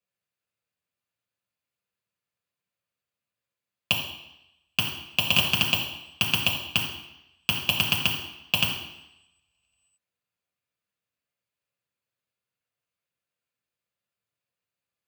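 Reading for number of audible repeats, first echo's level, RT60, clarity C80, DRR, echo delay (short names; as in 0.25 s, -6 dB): none, none, 0.85 s, 7.5 dB, -3.0 dB, none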